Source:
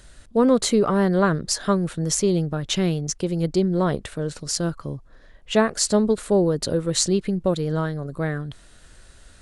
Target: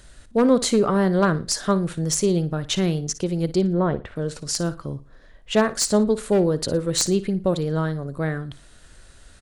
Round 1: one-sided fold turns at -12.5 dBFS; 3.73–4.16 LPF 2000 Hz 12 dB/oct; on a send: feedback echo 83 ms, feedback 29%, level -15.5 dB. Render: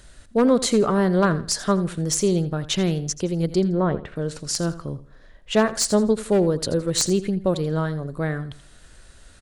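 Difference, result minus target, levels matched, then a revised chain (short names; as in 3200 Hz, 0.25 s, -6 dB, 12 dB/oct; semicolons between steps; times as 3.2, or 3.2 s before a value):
echo 26 ms late
one-sided fold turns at -12.5 dBFS; 3.73–4.16 LPF 2000 Hz 12 dB/oct; on a send: feedback echo 57 ms, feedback 29%, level -15.5 dB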